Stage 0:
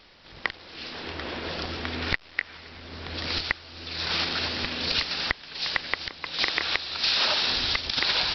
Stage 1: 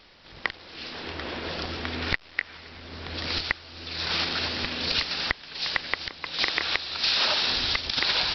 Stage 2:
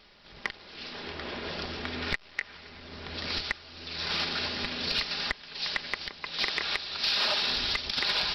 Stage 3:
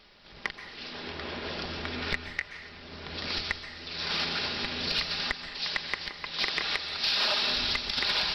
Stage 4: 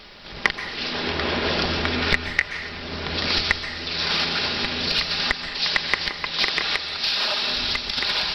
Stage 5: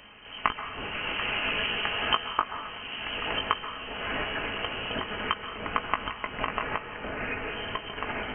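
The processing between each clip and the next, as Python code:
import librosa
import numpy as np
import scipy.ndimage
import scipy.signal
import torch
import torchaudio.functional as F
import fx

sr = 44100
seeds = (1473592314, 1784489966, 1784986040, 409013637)

y1 = x
y2 = y1 + 0.34 * np.pad(y1, (int(4.9 * sr / 1000.0), 0))[:len(y1)]
y2 = 10.0 ** (-10.0 / 20.0) * np.tanh(y2 / 10.0 ** (-10.0 / 20.0))
y2 = y2 * librosa.db_to_amplitude(-3.5)
y3 = fx.rev_plate(y2, sr, seeds[0], rt60_s=0.81, hf_ratio=0.85, predelay_ms=115, drr_db=9.5)
y4 = fx.rider(y3, sr, range_db=5, speed_s=0.5)
y4 = y4 * librosa.db_to_amplitude(8.0)
y5 = fx.doubler(y4, sr, ms=18.0, db=-8.0)
y5 = fx.freq_invert(y5, sr, carrier_hz=3100)
y5 = y5 * librosa.db_to_amplitude(-5.5)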